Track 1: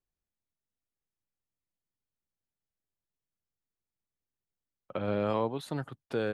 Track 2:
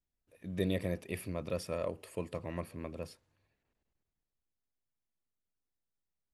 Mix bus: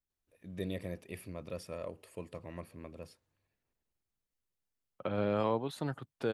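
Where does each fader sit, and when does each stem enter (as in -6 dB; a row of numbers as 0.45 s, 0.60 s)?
-1.5 dB, -5.5 dB; 0.10 s, 0.00 s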